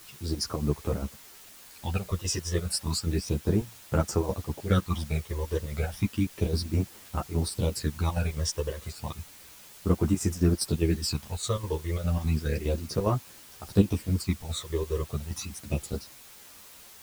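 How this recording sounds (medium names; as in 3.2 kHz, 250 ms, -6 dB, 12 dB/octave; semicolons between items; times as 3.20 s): phasing stages 12, 0.32 Hz, lowest notch 230–4200 Hz; chopped level 4.9 Hz, depth 65%, duty 65%; a quantiser's noise floor 8-bit, dither triangular; a shimmering, thickened sound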